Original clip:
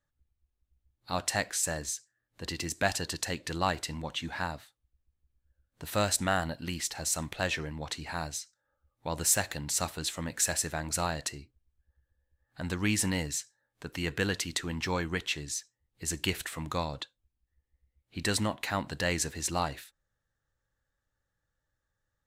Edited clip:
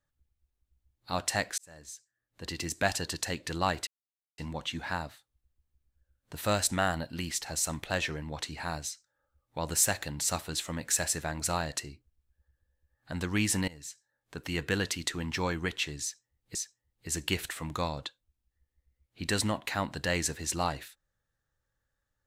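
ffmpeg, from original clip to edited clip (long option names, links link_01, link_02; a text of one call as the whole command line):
ffmpeg -i in.wav -filter_complex "[0:a]asplit=5[link_01][link_02][link_03][link_04][link_05];[link_01]atrim=end=1.58,asetpts=PTS-STARTPTS,afade=type=out:start_time=1.576:duration=0.004:curve=hsin[link_06];[link_02]atrim=start=1.58:end=3.87,asetpts=PTS-STARTPTS,afade=type=in:duration=1.09,afade=type=out:start_time=2.286:duration=0.004:curve=hsin,apad=pad_dur=0.51[link_07];[link_03]atrim=start=3.87:end=13.17,asetpts=PTS-STARTPTS,afade=type=in:duration=0.004:curve=hsin,afade=type=out:start_time=9.296:duration=0.004:curve=hsin:silence=0.0944061[link_08];[link_04]atrim=start=13.17:end=16.042,asetpts=PTS-STARTPTS,afade=type=in:duration=0.68:silence=0.0944061[link_09];[link_05]atrim=start=15.508[link_10];[link_06][link_07][link_08][link_09]concat=n=4:v=0:a=1[link_11];[link_11][link_10]acrossfade=duration=0.004:curve1=hsin:curve2=hsin" out.wav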